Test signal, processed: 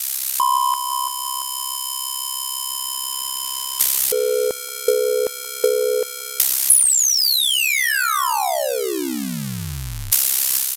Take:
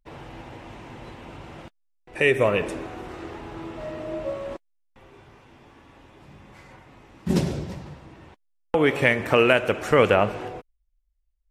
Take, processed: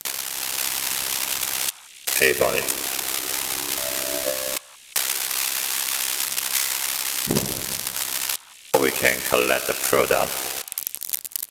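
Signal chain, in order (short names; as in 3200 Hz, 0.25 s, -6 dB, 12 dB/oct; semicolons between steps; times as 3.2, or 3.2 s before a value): switching spikes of -10.5 dBFS; low shelf 260 Hz -10 dB; ring modulator 33 Hz; AGC gain up to 9.5 dB; sample leveller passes 1; in parallel at -10.5 dB: requantised 6-bit, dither triangular; on the sum: downsampling 32000 Hz; on a send: delay with a stepping band-pass 0.178 s, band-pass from 1100 Hz, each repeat 1.4 oct, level -10.5 dB; on the sum: transient shaper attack +8 dB, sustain -1 dB; gain -9 dB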